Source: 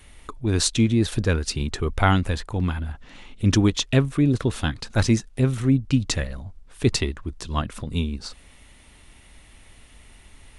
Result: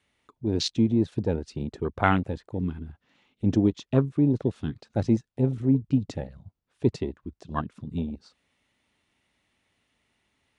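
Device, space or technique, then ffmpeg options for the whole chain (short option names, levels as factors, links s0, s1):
over-cleaned archive recording: -af "highpass=130,lowpass=6400,afwtdn=0.0501,volume=0.841"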